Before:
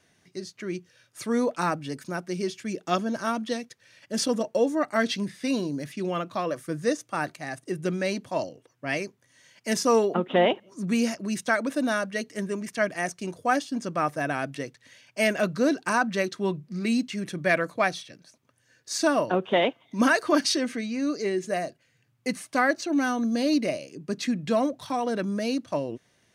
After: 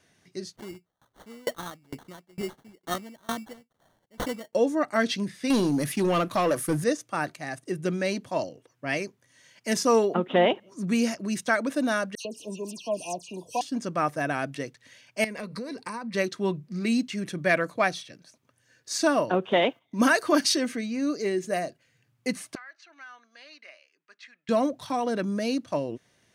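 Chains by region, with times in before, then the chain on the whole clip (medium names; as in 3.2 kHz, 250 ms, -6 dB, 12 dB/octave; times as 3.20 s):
0.56–4.53 s: sample-rate reducer 2.5 kHz + sawtooth tremolo in dB decaying 2.2 Hz, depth 29 dB
5.50–6.84 s: peaking EQ 11 kHz +13 dB 0.51 oct + waveshaping leveller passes 2
12.15–13.61 s: brick-wall FIR band-stop 1.1–2.4 kHz + bass shelf 380 Hz -8 dB + phase dispersion lows, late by 99 ms, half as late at 2.9 kHz
15.24–16.15 s: rippled EQ curve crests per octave 0.92, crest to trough 11 dB + compression 12:1, threshold -31 dBFS
19.52–21.60 s: gate -55 dBFS, range -10 dB + treble shelf 11 kHz +10 dB + tape noise reduction on one side only decoder only
22.55–24.49 s: ladder band-pass 2 kHz, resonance 25% + compression 12:1, threshold -40 dBFS
whole clip: none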